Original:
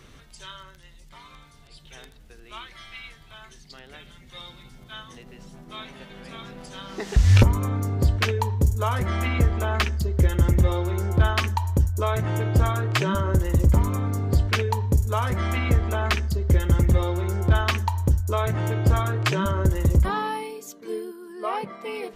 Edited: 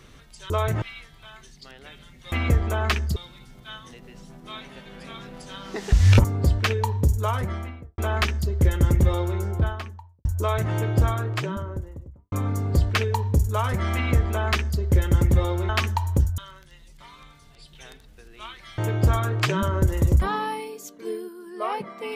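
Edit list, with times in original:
0:00.50–0:02.90: swap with 0:18.29–0:18.61
0:07.48–0:07.82: remove
0:08.79–0:09.56: fade out and dull
0:10.76–0:11.83: fade out and dull
0:12.38–0:13.90: fade out and dull
0:15.53–0:16.37: duplicate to 0:04.40
0:17.27–0:17.60: remove

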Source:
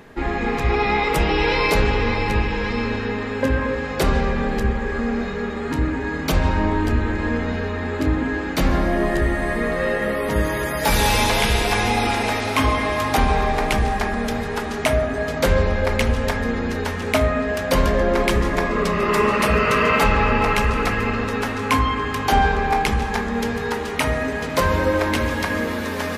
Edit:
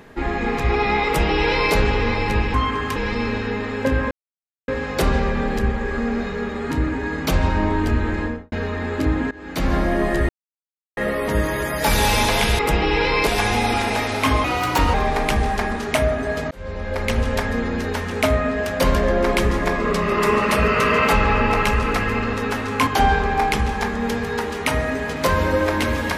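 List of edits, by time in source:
0:01.06–0:01.74: duplicate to 0:11.60
0:03.69: splice in silence 0.57 s
0:07.18–0:07.53: fade out and dull
0:08.32–0:08.77: fade in, from −23 dB
0:09.30–0:09.98: silence
0:12.77–0:13.36: play speed 118%
0:14.18–0:14.67: remove
0:15.42–0:16.16: fade in
0:21.78–0:22.20: move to 0:02.54

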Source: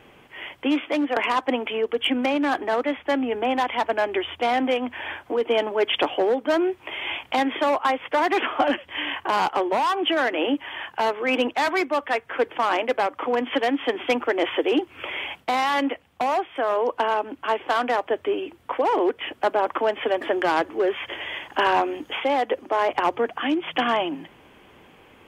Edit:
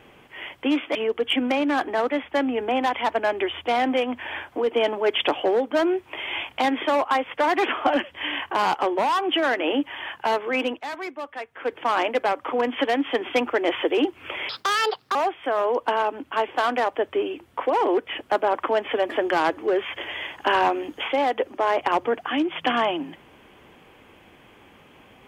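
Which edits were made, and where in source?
0:00.95–0:01.69: remove
0:11.22–0:12.63: duck −10 dB, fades 0.36 s linear
0:15.23–0:16.27: play speed 157%

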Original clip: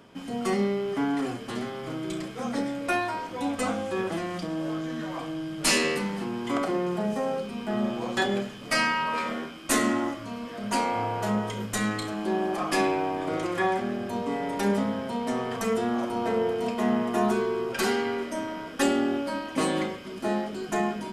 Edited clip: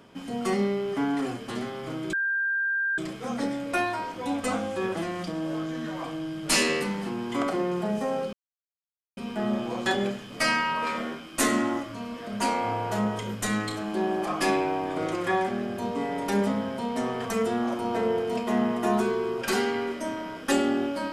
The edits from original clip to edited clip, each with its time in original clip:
0:02.13: insert tone 1,590 Hz −23.5 dBFS 0.85 s
0:07.48: splice in silence 0.84 s

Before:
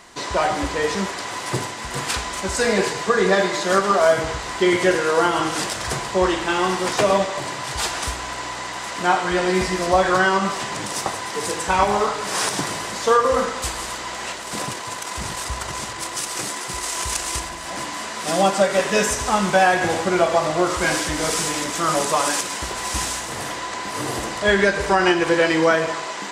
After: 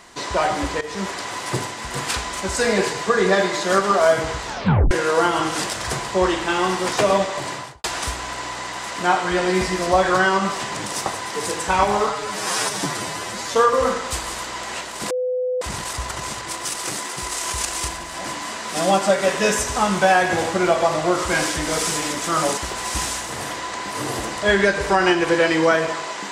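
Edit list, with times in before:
0:00.81–0:01.10: fade in, from −16 dB
0:04.45: tape stop 0.46 s
0:07.53–0:07.84: fade out and dull
0:12.10–0:13.07: time-stretch 1.5×
0:14.62–0:15.13: beep over 504 Hz −19.5 dBFS
0:22.09–0:22.57: remove

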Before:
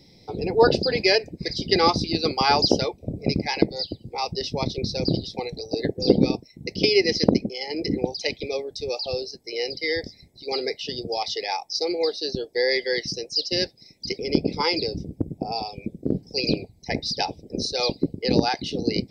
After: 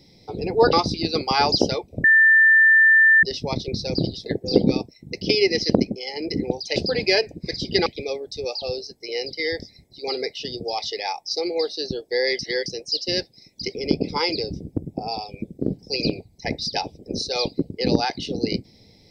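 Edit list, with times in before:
0:00.73–0:01.83: move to 0:08.30
0:03.14–0:04.33: beep over 1,780 Hz −10.5 dBFS
0:05.36–0:05.80: remove
0:12.83–0:13.10: reverse

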